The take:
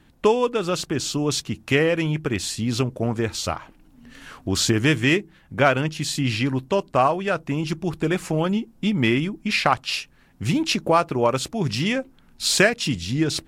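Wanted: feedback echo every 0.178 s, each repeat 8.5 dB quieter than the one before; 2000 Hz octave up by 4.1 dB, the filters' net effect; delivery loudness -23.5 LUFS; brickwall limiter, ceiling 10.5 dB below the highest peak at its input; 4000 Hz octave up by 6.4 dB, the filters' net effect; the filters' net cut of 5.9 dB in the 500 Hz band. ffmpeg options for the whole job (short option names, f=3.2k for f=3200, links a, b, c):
-af "equalizer=f=500:t=o:g=-8,equalizer=f=2k:t=o:g=3.5,equalizer=f=4k:t=o:g=7,alimiter=limit=-11.5dB:level=0:latency=1,aecho=1:1:178|356|534|712:0.376|0.143|0.0543|0.0206,volume=-0.5dB"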